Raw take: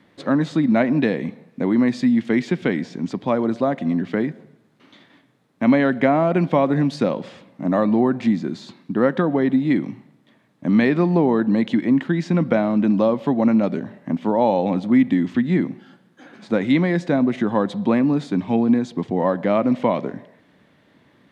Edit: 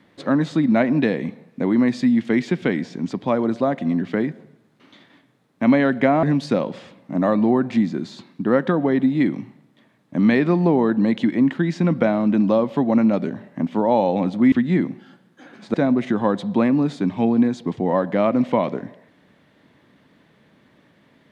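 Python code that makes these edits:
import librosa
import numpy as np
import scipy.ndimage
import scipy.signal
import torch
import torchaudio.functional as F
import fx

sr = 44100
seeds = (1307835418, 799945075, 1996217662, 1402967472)

y = fx.edit(x, sr, fx.cut(start_s=6.23, length_s=0.5),
    fx.cut(start_s=15.02, length_s=0.3),
    fx.cut(start_s=16.54, length_s=0.51), tone=tone)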